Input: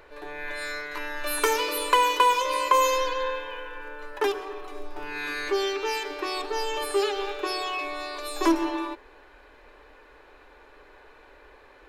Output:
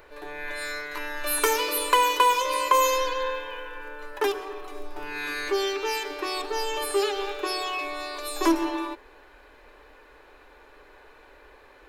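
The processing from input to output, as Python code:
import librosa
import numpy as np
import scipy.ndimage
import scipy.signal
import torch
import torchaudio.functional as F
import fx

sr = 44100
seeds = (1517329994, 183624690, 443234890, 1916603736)

y = fx.high_shelf(x, sr, hz=9100.0, db=7.5)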